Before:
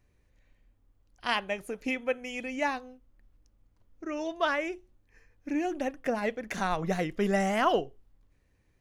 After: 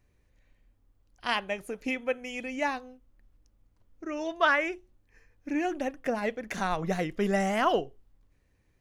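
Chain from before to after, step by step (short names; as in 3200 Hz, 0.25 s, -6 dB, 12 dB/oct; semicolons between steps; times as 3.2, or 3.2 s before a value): 4.2–5.78 dynamic EQ 1600 Hz, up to +7 dB, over -42 dBFS, Q 0.81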